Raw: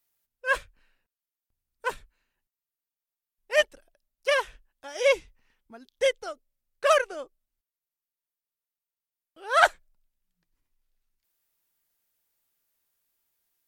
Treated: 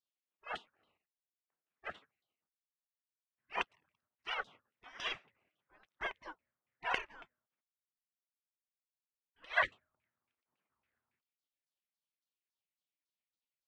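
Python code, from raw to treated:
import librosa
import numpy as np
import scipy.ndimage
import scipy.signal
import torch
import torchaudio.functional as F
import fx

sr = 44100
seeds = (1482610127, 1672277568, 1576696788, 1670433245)

y = fx.filter_lfo_lowpass(x, sr, shape='saw_down', hz=3.6, low_hz=900.0, high_hz=2400.0, q=6.8)
y = fx.spec_gate(y, sr, threshold_db=-25, keep='weak')
y = y * 10.0 ** (1.5 / 20.0)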